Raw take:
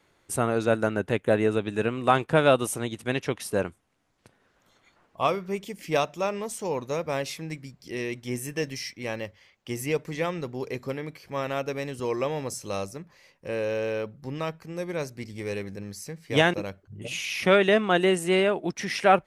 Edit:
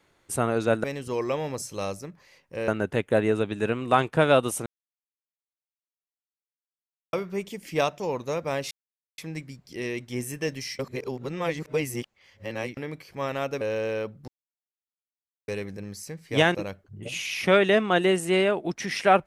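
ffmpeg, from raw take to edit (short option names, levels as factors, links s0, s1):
-filter_complex "[0:a]asplit=12[s0][s1][s2][s3][s4][s5][s6][s7][s8][s9][s10][s11];[s0]atrim=end=0.842[s12];[s1]atrim=start=11.758:end=13.602[s13];[s2]atrim=start=0.838:end=2.82,asetpts=PTS-STARTPTS,afade=t=out:st=1.978:d=0.004:c=hsin[s14];[s3]atrim=start=2.82:end=5.29,asetpts=PTS-STARTPTS,volume=0[s15];[s4]atrim=start=5.29:end=6.162,asetpts=PTS-STARTPTS,afade=t=in:d=0.004:c=hsin[s16];[s5]atrim=start=6.618:end=7.33,asetpts=PTS-STARTPTS,afade=t=out:st=0.708:d=0.004:c=hsin,apad=pad_dur=0.47[s17];[s6]atrim=start=7.33:end=8.942,asetpts=PTS-STARTPTS,afade=t=in:d=0.004:c=hsin[s18];[s7]atrim=start=8.938:end=10.922,asetpts=PTS-STARTPTS,areverse[s19];[s8]atrim=start=10.918:end=11.762[s20];[s9]atrim=start=13.598:end=14.27,asetpts=PTS-STARTPTS,afade=t=out:st=0.668:d=0.004:c=hsin[s21];[s10]atrim=start=14.27:end=15.47,asetpts=PTS-STARTPTS,volume=0[s22];[s11]atrim=start=15.47,asetpts=PTS-STARTPTS,afade=t=in:d=0.004:c=hsin[s23];[s12][s13]acrossfade=d=0.004:c1=hsin:c2=hsin[s24];[s14][s15][s16]concat=n=3:v=0:a=1[s25];[s24][s25]acrossfade=d=0.004:c1=hsin:c2=hsin[s26];[s17][s18]concat=n=2:v=0:a=1[s27];[s26][s27]acrossfade=d=0.004:c1=hsin:c2=hsin[s28];[s28][s19]acrossfade=d=0.004:c1=hsin:c2=hsin[s29];[s29][s20]acrossfade=d=0.004:c1=hsin:c2=hsin[s30];[s21][s22][s23]concat=n=3:v=0:a=1[s31];[s30][s31]acrossfade=d=0.004:c1=hsin:c2=hsin"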